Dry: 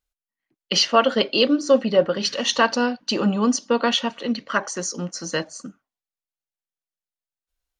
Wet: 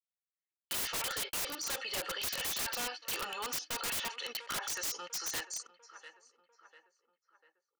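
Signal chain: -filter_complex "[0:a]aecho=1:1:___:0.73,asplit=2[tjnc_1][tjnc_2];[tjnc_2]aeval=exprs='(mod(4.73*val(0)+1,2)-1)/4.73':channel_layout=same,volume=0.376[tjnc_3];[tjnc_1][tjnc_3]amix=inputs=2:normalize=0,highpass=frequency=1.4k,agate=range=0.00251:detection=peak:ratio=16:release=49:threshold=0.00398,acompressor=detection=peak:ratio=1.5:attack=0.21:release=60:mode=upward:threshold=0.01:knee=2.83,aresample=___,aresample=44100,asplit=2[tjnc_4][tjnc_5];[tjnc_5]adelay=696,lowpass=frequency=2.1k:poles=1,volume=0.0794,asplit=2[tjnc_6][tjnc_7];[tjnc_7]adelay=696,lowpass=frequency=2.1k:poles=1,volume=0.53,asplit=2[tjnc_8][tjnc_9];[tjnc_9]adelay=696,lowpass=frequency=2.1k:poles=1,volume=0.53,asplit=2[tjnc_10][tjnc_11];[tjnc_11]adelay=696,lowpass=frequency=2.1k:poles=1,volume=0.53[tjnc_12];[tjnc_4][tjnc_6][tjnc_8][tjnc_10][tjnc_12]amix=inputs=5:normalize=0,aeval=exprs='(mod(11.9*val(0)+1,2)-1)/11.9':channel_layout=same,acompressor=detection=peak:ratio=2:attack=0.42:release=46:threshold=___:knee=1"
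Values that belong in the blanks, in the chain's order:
2.3, 22050, 0.0112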